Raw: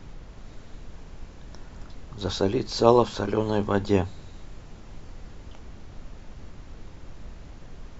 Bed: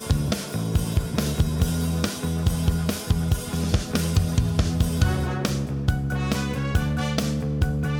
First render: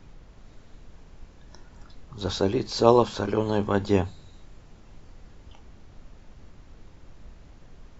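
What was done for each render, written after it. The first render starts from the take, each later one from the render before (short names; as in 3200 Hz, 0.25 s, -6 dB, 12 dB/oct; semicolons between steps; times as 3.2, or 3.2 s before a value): noise print and reduce 6 dB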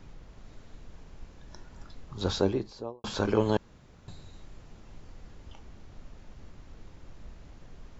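2.21–3.04 studio fade out; 3.57–4.08 room tone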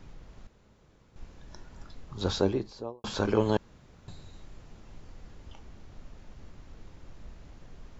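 0.47–1.16 room tone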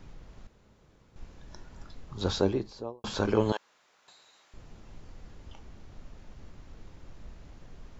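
3.52–4.54 HPF 880 Hz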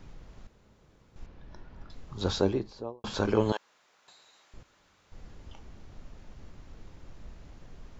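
1.26–1.9 air absorption 190 m; 2.59–3.14 high shelf 6800 Hz -8.5 dB; 4.63–5.12 room tone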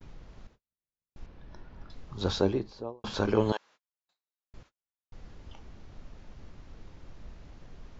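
LPF 6600 Hz 24 dB/oct; gate -53 dBFS, range -44 dB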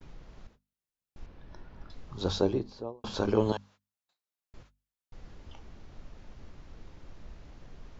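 dynamic EQ 1900 Hz, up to -6 dB, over -52 dBFS, Q 1.2; notches 50/100/150/200/250 Hz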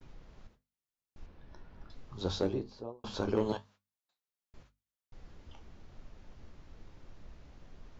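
overloaded stage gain 15 dB; flange 1 Hz, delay 7.4 ms, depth 7.2 ms, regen -62%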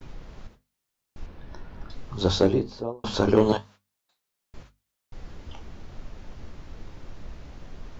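gain +11.5 dB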